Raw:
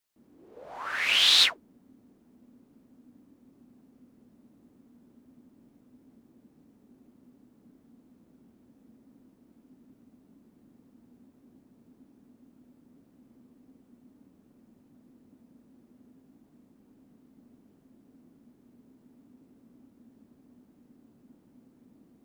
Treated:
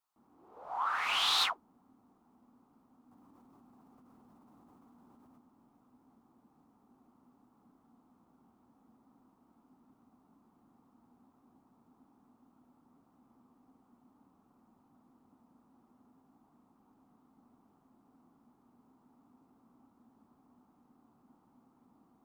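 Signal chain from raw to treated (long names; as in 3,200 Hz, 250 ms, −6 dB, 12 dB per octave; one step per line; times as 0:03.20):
flat-topped bell 990 Hz +15 dB 1.1 octaves
soft clipping −12.5 dBFS, distortion −19 dB
0:03.11–0:05.38: envelope flattener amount 100%
level −8.5 dB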